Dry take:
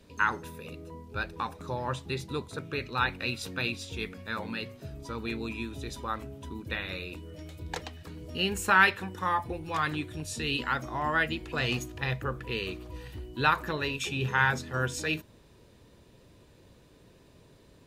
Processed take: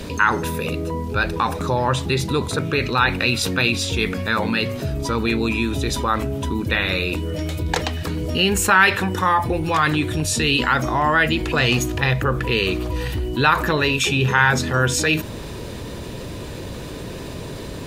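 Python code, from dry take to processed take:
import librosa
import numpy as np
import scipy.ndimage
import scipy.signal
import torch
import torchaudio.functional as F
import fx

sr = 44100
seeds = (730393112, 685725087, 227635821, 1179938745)

y = fx.env_flatten(x, sr, amount_pct=50)
y = y * 10.0 ** (6.0 / 20.0)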